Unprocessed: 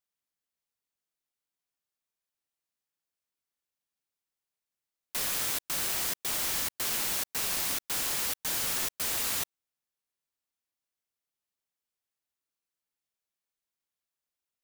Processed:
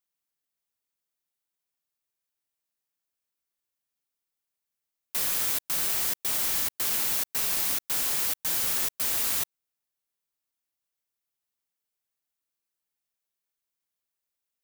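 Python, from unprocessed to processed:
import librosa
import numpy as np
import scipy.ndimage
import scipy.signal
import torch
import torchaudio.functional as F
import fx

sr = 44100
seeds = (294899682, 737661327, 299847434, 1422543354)

y = fx.high_shelf(x, sr, hz=11000.0, db=6.5)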